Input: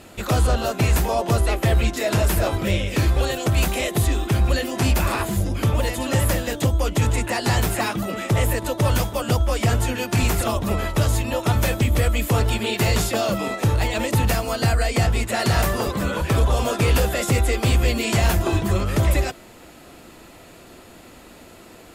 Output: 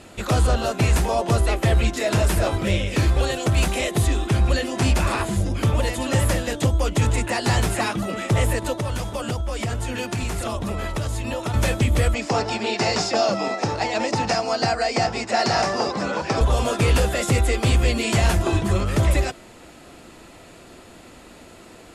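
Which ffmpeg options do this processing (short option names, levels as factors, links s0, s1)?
-filter_complex "[0:a]asettb=1/sr,asplit=3[s0][s1][s2];[s0]atrim=end=4.294[s3];[s1]atrim=start=4.29:end=5.58,asetpts=PTS-STARTPTS,afade=t=in:d=0.004:c=qsin,afade=t=out:st=1.286:d=0.004:c=qsin,lowpass=12000[s4];[s2]atrim=start=5.576[s5];[s3][s4]acrossfade=d=0.004:c1=hsin:c2=qsin[s6];[s6][s5]acrossfade=d=0.004:c1=qsin:c2=hsin,asettb=1/sr,asplit=3[s7][s8][s9];[s7]atrim=end=8.794[s10];[s8]atrim=start=8.79:end=11.54,asetpts=PTS-STARTPTS,afade=t=in:d=0.004:c=qsin,afade=t=out:st=2.746:d=0.004:c=qsin,acompressor=threshold=0.0794:ratio=6:attack=3.2:release=140:knee=1:detection=peak[s11];[s9]atrim=start=11.536[s12];[s10][s11]acrossfade=d=0.004:c1=hsin:c2=qsin[s13];[s13][s12]acrossfade=d=0.004:c1=qsin:c2=hsin,asettb=1/sr,asplit=3[s14][s15][s16];[s14]atrim=end=12.144[s17];[s15]atrim=start=12.14:end=16.41,asetpts=PTS-STARTPTS,afade=t=in:d=0.004:c=qsin,afade=t=out:st=4.266:d=0.004:c=qsin,highpass=190,equalizer=f=770:t=q:w=4:g=8,equalizer=f=3300:t=q:w=4:g=-6,equalizer=f=5200:t=q:w=4:g=10,lowpass=f=7000:w=0.5412,lowpass=f=7000:w=1.3066[s18];[s16]atrim=start=16.406[s19];[s17][s18]acrossfade=d=0.004:c1=hsin:c2=qsin[s20];[s20][s19]acrossfade=d=0.004:c1=qsin:c2=hsin,lowpass=f=11000:w=0.5412,lowpass=f=11000:w=1.3066"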